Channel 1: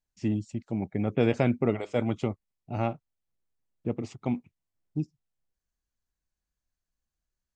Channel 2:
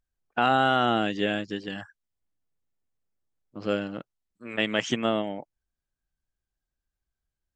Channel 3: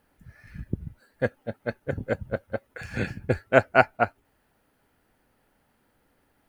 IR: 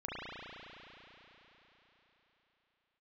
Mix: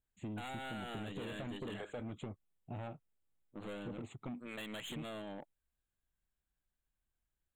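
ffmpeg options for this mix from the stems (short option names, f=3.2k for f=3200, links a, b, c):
-filter_complex "[0:a]asoftclip=type=tanh:threshold=-25dB,acompressor=threshold=-32dB:ratio=6,volume=-4.5dB[a];[1:a]acompressor=threshold=-27dB:ratio=2.5,aeval=exprs='(tanh(56.2*val(0)+0.4)-tanh(0.4))/56.2':c=same,adynamicequalizer=threshold=0.00251:dfrequency=2600:dqfactor=0.7:tfrequency=2600:tqfactor=0.7:attack=5:release=100:ratio=0.375:range=2:mode=boostabove:tftype=highshelf,volume=-4dB[b];[a][b]amix=inputs=2:normalize=0,asoftclip=type=tanh:threshold=-31.5dB,asuperstop=centerf=5300:order=8:qfactor=1.8,acompressor=threshold=-40dB:ratio=6"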